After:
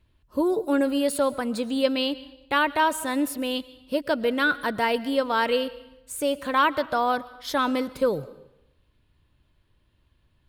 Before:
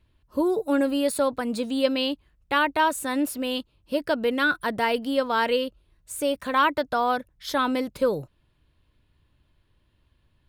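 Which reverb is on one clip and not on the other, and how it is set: digital reverb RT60 0.85 s, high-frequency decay 0.95×, pre-delay 85 ms, DRR 17.5 dB

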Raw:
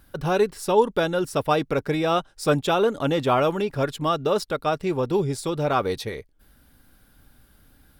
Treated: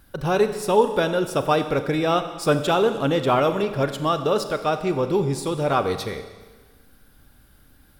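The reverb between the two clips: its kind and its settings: Schroeder reverb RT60 1.4 s, combs from 29 ms, DRR 9 dB; gain +1 dB

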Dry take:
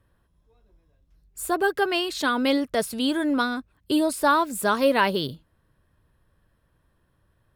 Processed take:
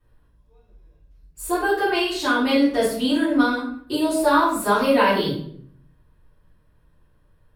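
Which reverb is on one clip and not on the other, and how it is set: shoebox room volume 97 m³, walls mixed, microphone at 3.6 m; gain -10.5 dB

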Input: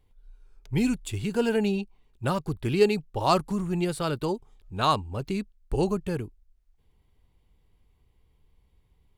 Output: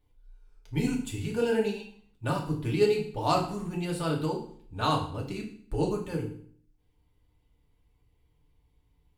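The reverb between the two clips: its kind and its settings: FDN reverb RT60 0.54 s, low-frequency decay 1.25×, high-frequency decay 0.95×, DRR -1.5 dB; gain -6.5 dB

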